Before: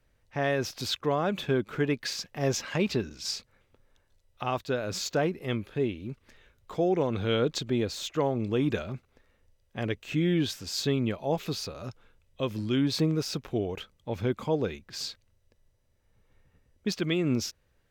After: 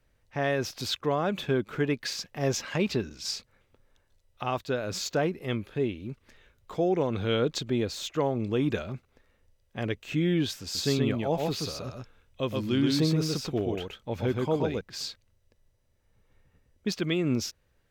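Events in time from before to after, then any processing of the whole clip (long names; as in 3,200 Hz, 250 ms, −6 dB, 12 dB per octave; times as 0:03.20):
0:10.62–0:14.81: single-tap delay 126 ms −3 dB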